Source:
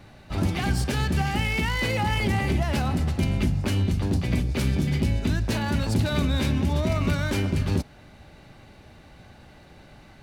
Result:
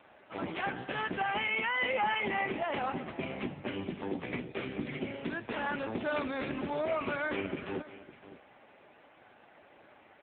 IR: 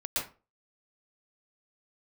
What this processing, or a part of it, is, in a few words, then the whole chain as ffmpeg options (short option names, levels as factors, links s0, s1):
satellite phone: -af "highpass=380,lowpass=3100,aecho=1:1:557:0.158" -ar 8000 -c:a libopencore_amrnb -b:a 5900